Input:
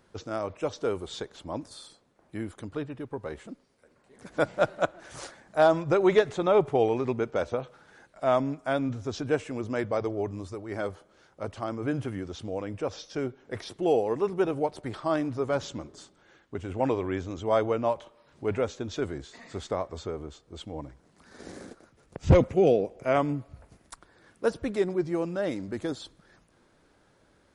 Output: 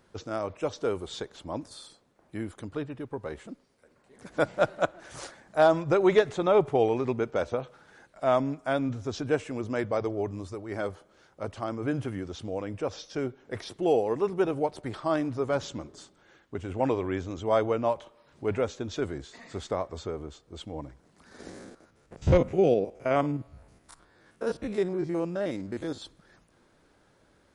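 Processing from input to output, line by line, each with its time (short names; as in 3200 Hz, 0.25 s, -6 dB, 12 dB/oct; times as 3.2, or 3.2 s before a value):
21.49–26.02 stepped spectrum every 50 ms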